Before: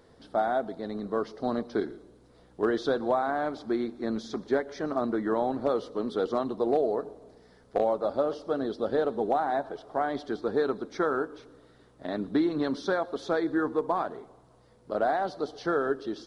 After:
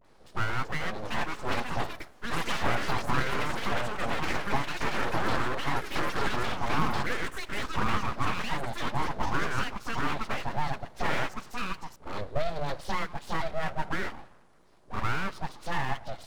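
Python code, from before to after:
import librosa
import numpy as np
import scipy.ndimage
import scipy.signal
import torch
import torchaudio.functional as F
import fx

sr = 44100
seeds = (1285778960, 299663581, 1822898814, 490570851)

y = fx.dispersion(x, sr, late='highs', ms=48.0, hz=710.0)
y = fx.echo_pitch(y, sr, ms=460, semitones=6, count=3, db_per_echo=-3.0)
y = np.abs(y)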